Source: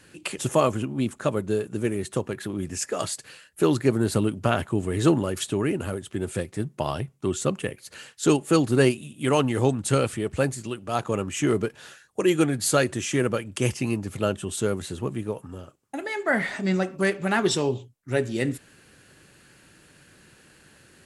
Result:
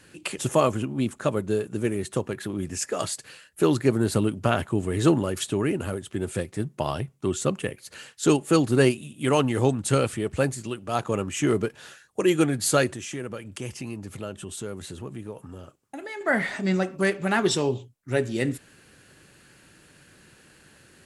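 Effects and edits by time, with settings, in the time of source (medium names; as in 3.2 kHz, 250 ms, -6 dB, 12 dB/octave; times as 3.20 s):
12.90–16.21 s: compression 2:1, threshold -37 dBFS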